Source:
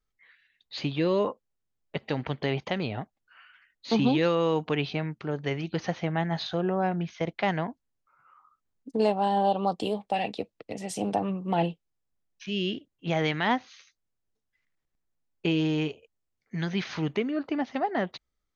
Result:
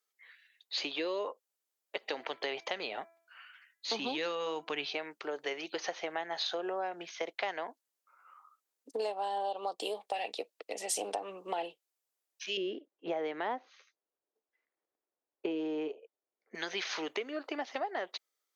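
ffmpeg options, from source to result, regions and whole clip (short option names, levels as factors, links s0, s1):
-filter_complex "[0:a]asettb=1/sr,asplit=3[s0][s1][s2];[s0]atrim=end=2.054[s3];[s1]atrim=start=2.05:end=4.87,asetpts=PTS-STARTPTS,afade=t=in:d=0.004:c=qsin,afade=t=out:st=2.816:d=0.004:c=qsin,asubboost=boost=8:cutoff=170,bandreject=f=333.4:t=h:w=4,bandreject=f=666.8:t=h:w=4,bandreject=f=1000.2:t=h:w=4,bandreject=f=1333.6:t=h:w=4,bandreject=f=1667:t=h:w=4,bandreject=f=2000.4:t=h:w=4,bandreject=f=2333.8:t=h:w=4[s4];[s2]atrim=start=4.866[s5];[s3][s4]acrossfade=d=0.004:c1=hsin:c2=qsin[s6];[s6][s5]acrossfade=d=0.004:c1=qsin:c2=hsin,asettb=1/sr,asplit=3[s7][s8][s9];[s7]atrim=end=12.574[s10];[s8]atrim=start=12.57:end=16.55,asetpts=PTS-STARTPTS,afade=t=in:d=0.004:c=qsin,afade=t=out:st=3.976:d=0.004:c=qsin,lowpass=f=2200:p=1,tiltshelf=f=1100:g=8[s11];[s9]atrim=start=16.546[s12];[s10][s11]acrossfade=d=0.004:c1=hsin:c2=qsin[s13];[s13][s12]acrossfade=d=0.004:c1=qsin:c2=hsin,highpass=f=390:w=0.5412,highpass=f=390:w=1.3066,acompressor=threshold=0.0224:ratio=4,aemphasis=mode=production:type=cd"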